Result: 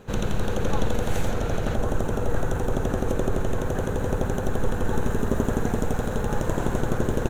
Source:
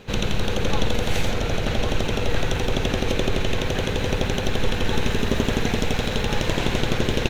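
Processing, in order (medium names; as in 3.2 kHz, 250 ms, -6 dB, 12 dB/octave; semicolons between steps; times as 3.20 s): high-order bell 3.3 kHz -9.5 dB, from 1.74 s -16 dB; trim -1.5 dB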